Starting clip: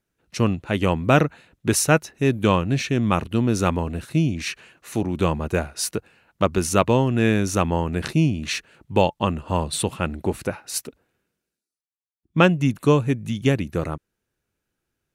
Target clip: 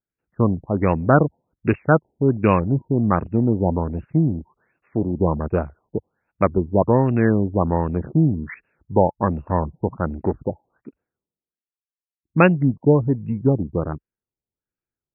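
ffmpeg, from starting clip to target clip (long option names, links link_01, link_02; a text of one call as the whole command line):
ffmpeg -i in.wav -af "afwtdn=0.0355,afftfilt=real='re*lt(b*sr/1024,930*pow(2900/930,0.5+0.5*sin(2*PI*1.3*pts/sr)))':imag='im*lt(b*sr/1024,930*pow(2900/930,0.5+0.5*sin(2*PI*1.3*pts/sr)))':win_size=1024:overlap=0.75,volume=2dB" out.wav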